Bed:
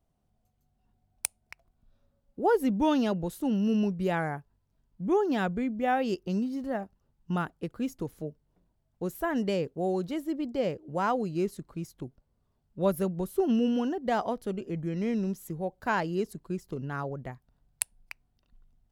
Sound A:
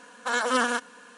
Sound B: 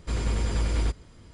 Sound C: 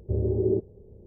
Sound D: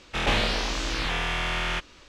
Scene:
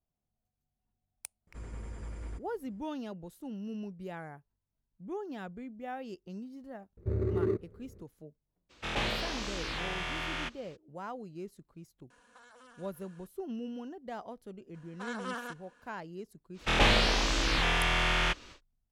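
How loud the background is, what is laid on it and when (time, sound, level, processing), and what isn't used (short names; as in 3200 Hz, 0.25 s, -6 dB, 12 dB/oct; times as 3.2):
bed -13.5 dB
1.47 add B -16 dB + EQ curve 1900 Hz 0 dB, 4100 Hz -12 dB, 7200 Hz -3 dB
6.97 add C -5 dB + median filter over 41 samples
8.69 add D -8 dB, fades 0.02 s + HPF 43 Hz
12.1 add A -14.5 dB + compressor 16:1, threshold -38 dBFS
14.74 add A -14.5 dB + high shelf 7700 Hz -10.5 dB
16.53 add D, fades 0.10 s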